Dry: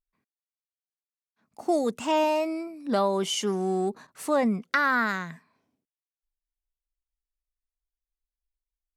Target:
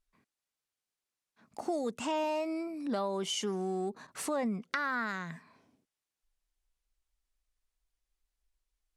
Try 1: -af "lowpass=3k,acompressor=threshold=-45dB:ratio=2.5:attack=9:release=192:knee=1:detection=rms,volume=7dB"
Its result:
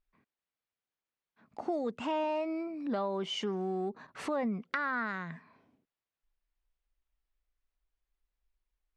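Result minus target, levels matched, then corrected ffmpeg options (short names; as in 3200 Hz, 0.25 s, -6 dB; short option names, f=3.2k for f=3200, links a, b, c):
8000 Hz band -12.5 dB
-af "lowpass=11k,acompressor=threshold=-45dB:ratio=2.5:attack=9:release=192:knee=1:detection=rms,volume=7dB"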